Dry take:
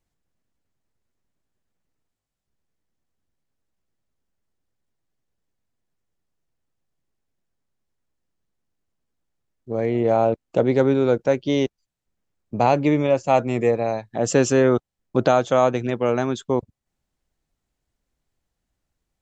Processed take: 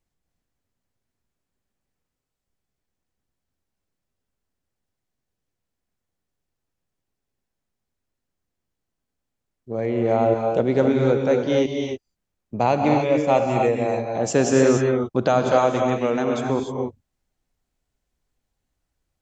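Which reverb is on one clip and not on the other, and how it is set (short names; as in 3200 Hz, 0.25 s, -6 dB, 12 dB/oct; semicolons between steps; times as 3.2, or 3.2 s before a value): non-linear reverb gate 0.32 s rising, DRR 1.5 dB; gain -2 dB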